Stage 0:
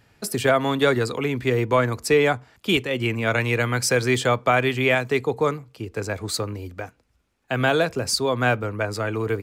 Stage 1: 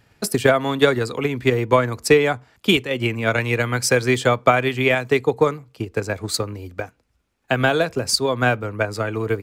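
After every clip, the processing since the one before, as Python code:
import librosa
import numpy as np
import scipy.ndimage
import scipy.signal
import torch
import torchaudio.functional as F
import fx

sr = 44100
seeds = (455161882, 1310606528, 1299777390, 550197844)

y = fx.transient(x, sr, attack_db=7, sustain_db=-1)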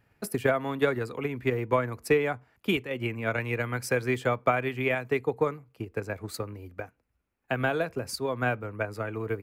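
y = fx.band_shelf(x, sr, hz=5300.0, db=-8.0, octaves=1.7)
y = y * librosa.db_to_amplitude(-9.0)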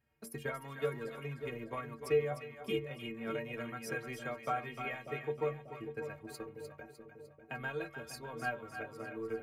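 y = fx.stiff_resonator(x, sr, f0_hz=68.0, decay_s=0.38, stiffness=0.03)
y = fx.echo_split(y, sr, split_hz=650.0, low_ms=591, high_ms=302, feedback_pct=52, wet_db=-8)
y = y * librosa.db_to_amplitude(-3.0)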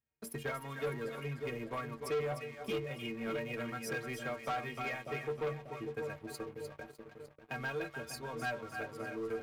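y = fx.leveller(x, sr, passes=3)
y = y * librosa.db_to_amplitude(-8.5)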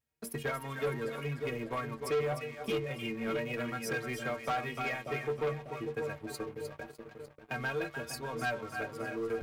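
y = fx.vibrato(x, sr, rate_hz=0.9, depth_cents=27.0)
y = y * librosa.db_to_amplitude(3.5)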